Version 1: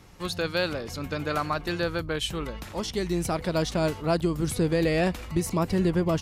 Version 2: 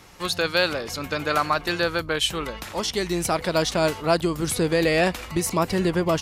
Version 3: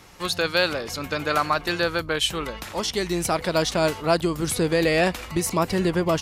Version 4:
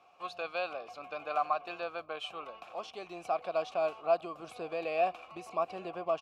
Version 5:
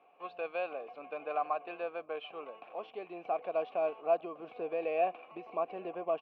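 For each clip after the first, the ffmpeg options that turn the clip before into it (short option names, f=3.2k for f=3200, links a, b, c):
-af "lowshelf=f=360:g=-10,volume=7.5dB"
-af anull
-filter_complex "[0:a]asplit=3[a][b][c];[a]bandpass=f=730:t=q:w=8,volume=0dB[d];[b]bandpass=f=1.09k:t=q:w=8,volume=-6dB[e];[c]bandpass=f=2.44k:t=q:w=8,volume=-9dB[f];[d][e][f]amix=inputs=3:normalize=0,asplit=2[g][h];[h]adelay=874.6,volume=-24dB,highshelf=f=4k:g=-19.7[i];[g][i]amix=inputs=2:normalize=0,volume=-1dB"
-af "highpass=190,equalizer=f=270:t=q:w=4:g=5,equalizer=f=450:t=q:w=4:g=7,equalizer=f=1.3k:t=q:w=4:g=-7,lowpass=f=2.7k:w=0.5412,lowpass=f=2.7k:w=1.3066,volume=-1.5dB"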